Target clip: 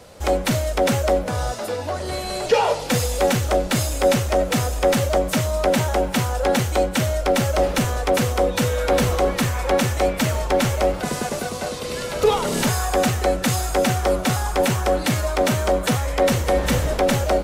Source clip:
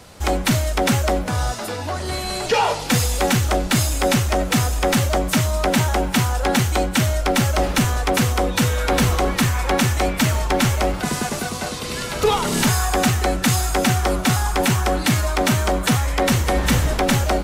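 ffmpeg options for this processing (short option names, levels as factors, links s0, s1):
-af "equalizer=f=530:w=2.2:g=9,volume=0.668"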